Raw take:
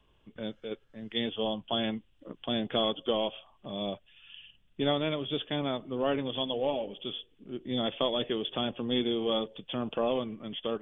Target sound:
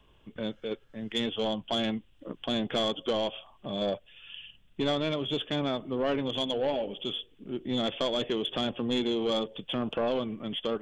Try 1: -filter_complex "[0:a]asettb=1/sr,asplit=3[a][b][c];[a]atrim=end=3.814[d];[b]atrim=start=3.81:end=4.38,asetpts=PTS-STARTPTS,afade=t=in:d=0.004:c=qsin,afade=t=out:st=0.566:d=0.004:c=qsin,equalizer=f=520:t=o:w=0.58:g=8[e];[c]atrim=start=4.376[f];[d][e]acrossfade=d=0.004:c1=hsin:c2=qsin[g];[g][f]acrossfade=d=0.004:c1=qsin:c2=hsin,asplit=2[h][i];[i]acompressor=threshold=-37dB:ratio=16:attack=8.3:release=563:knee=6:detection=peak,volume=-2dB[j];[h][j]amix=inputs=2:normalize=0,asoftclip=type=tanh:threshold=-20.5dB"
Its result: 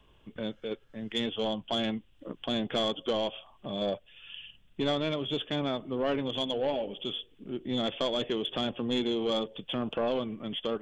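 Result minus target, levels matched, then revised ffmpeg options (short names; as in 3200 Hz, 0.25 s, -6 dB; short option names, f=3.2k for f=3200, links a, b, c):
compressor: peak gain reduction +6 dB
-filter_complex "[0:a]asettb=1/sr,asplit=3[a][b][c];[a]atrim=end=3.814[d];[b]atrim=start=3.81:end=4.38,asetpts=PTS-STARTPTS,afade=t=in:d=0.004:c=qsin,afade=t=out:st=0.566:d=0.004:c=qsin,equalizer=f=520:t=o:w=0.58:g=8[e];[c]atrim=start=4.376[f];[d][e]acrossfade=d=0.004:c1=hsin:c2=qsin[g];[g][f]acrossfade=d=0.004:c1=qsin:c2=hsin,asplit=2[h][i];[i]acompressor=threshold=-30.5dB:ratio=16:attack=8.3:release=563:knee=6:detection=peak,volume=-2dB[j];[h][j]amix=inputs=2:normalize=0,asoftclip=type=tanh:threshold=-20.5dB"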